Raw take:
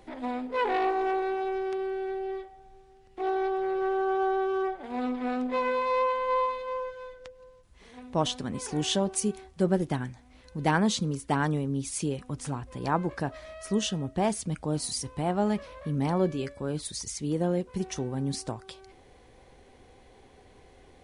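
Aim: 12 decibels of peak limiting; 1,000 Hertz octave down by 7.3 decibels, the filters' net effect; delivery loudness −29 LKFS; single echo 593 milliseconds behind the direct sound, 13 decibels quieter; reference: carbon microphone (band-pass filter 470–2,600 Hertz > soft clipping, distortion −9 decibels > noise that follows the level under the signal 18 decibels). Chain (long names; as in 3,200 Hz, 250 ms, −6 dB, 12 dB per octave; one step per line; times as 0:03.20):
parametric band 1,000 Hz −9 dB
brickwall limiter −26 dBFS
band-pass filter 470–2,600 Hz
single-tap delay 593 ms −13 dB
soft clipping −38.5 dBFS
noise that follows the level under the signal 18 dB
level +15.5 dB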